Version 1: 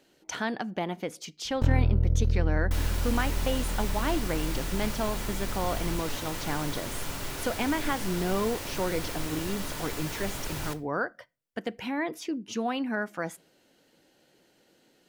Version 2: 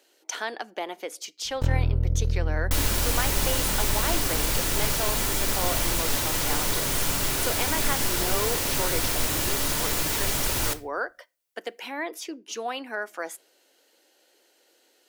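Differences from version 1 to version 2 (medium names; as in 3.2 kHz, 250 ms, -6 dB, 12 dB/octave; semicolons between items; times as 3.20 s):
speech: add high-pass 350 Hz 24 dB/octave; second sound +7.0 dB; master: add treble shelf 4.3 kHz +7.5 dB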